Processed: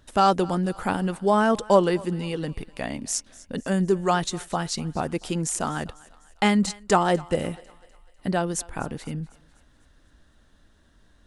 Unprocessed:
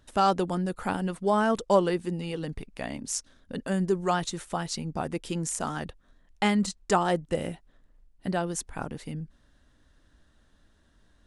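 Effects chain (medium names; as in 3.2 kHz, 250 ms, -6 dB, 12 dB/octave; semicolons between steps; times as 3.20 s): thinning echo 249 ms, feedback 52%, high-pass 560 Hz, level -20.5 dB; trim +4 dB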